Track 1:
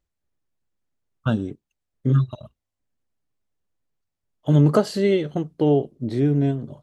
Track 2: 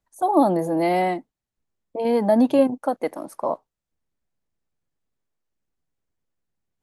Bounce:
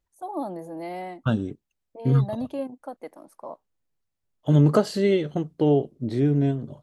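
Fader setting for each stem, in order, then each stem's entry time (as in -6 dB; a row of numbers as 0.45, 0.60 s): -1.5, -13.5 dB; 0.00, 0.00 s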